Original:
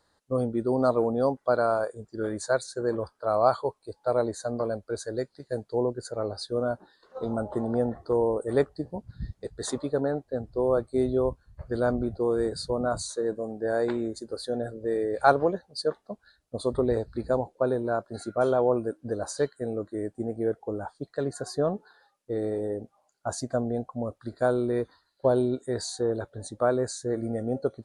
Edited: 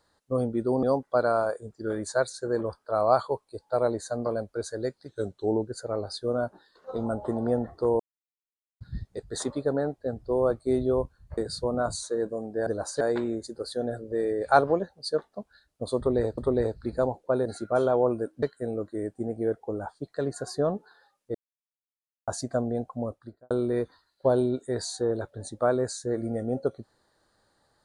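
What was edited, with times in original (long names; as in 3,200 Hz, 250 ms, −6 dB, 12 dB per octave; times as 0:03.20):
0:00.83–0:01.17: remove
0:05.42–0:05.95: play speed 89%
0:08.27–0:09.08: silence
0:11.65–0:12.44: remove
0:16.69–0:17.10: repeat, 2 plays
0:17.77–0:18.11: remove
0:19.08–0:19.42: move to 0:13.73
0:22.34–0:23.27: silence
0:24.02–0:24.50: fade out and dull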